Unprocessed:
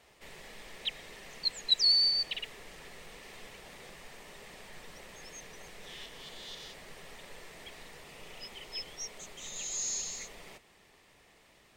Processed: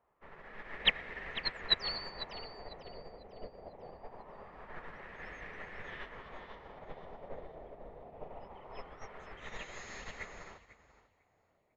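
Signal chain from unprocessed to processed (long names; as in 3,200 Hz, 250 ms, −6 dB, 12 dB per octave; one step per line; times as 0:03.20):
auto-filter low-pass sine 0.23 Hz 620–1,800 Hz
echo with shifted repeats 498 ms, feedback 42%, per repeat +40 Hz, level −7 dB
expander for the loud parts 2.5 to 1, over −57 dBFS
level +15 dB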